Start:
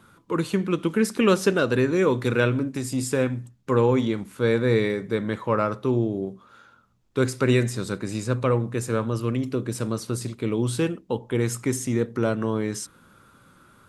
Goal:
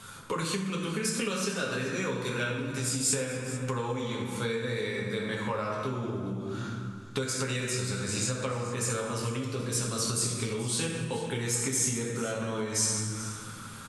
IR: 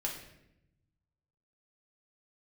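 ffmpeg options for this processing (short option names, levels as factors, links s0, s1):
-filter_complex "[0:a]equalizer=f=330:t=o:w=0.28:g=-10[s0];[1:a]atrim=start_sample=2205,asetrate=22932,aresample=44100[s1];[s0][s1]afir=irnorm=-1:irlink=0,acompressor=threshold=0.0316:ratio=12,equalizer=f=6900:t=o:w=2.8:g=13,aecho=1:1:432:0.168"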